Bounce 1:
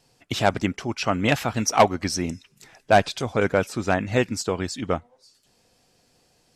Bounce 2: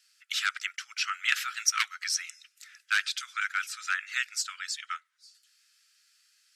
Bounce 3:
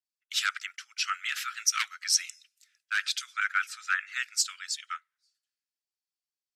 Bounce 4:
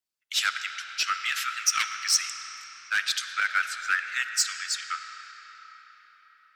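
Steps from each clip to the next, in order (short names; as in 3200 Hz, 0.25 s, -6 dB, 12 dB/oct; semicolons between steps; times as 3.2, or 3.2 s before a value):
Chebyshev high-pass 1300 Hz, order 6
limiter -18.5 dBFS, peak gain reduction 10 dB; three-band expander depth 100%
in parallel at -4.5 dB: hard clip -27 dBFS, distortion -7 dB; on the sum: reverb RT60 4.9 s, pre-delay 20 ms, DRR 7.5 dB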